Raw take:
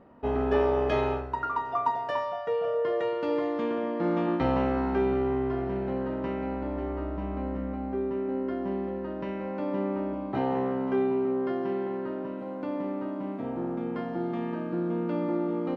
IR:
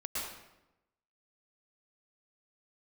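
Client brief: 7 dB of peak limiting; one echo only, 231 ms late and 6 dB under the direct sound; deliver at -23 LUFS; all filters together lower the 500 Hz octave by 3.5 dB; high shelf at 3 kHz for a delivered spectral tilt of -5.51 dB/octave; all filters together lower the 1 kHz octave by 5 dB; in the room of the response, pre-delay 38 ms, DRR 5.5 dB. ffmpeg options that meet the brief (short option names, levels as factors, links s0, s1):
-filter_complex "[0:a]equalizer=f=500:t=o:g=-3.5,equalizer=f=1000:t=o:g=-4.5,highshelf=f=3000:g=-5.5,alimiter=limit=0.0668:level=0:latency=1,aecho=1:1:231:0.501,asplit=2[s0][s1];[1:a]atrim=start_sample=2205,adelay=38[s2];[s1][s2]afir=irnorm=-1:irlink=0,volume=0.355[s3];[s0][s3]amix=inputs=2:normalize=0,volume=2.99"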